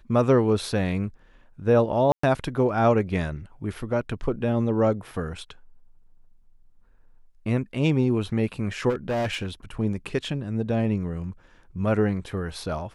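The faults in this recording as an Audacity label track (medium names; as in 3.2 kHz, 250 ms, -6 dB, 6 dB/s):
2.120000	2.230000	dropout 114 ms
8.890000	9.470000	clipped -22.5 dBFS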